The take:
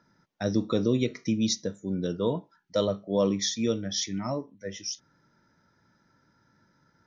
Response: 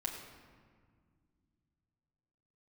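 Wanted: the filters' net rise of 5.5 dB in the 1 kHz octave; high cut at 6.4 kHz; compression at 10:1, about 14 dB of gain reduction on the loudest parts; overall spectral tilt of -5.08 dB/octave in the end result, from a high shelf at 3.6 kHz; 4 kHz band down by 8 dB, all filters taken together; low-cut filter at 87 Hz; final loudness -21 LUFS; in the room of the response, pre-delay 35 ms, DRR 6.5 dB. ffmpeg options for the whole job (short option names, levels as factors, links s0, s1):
-filter_complex "[0:a]highpass=87,lowpass=6400,equalizer=f=1000:t=o:g=7.5,highshelf=f=3600:g=-5,equalizer=f=4000:t=o:g=-6,acompressor=threshold=0.0224:ratio=10,asplit=2[s0][s1];[1:a]atrim=start_sample=2205,adelay=35[s2];[s1][s2]afir=irnorm=-1:irlink=0,volume=0.422[s3];[s0][s3]amix=inputs=2:normalize=0,volume=7.08"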